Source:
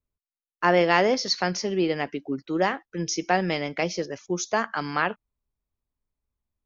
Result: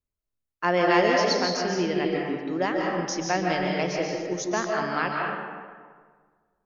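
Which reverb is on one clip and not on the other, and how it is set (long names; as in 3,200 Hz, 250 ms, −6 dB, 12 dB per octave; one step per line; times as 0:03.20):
comb and all-pass reverb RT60 1.7 s, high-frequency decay 0.55×, pre-delay 105 ms, DRR −1 dB
level −3.5 dB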